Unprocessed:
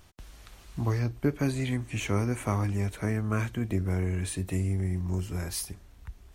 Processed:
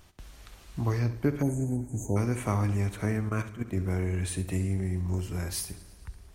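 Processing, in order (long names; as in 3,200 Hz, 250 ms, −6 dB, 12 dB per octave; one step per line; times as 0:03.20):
0:01.42–0:02.16: time-frequency box erased 980–6,200 Hz
0:03.29–0:03.77: output level in coarse steps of 14 dB
flutter between parallel walls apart 11.7 metres, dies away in 0.3 s
feedback echo with a swinging delay time 111 ms, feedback 71%, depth 84 cents, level −20 dB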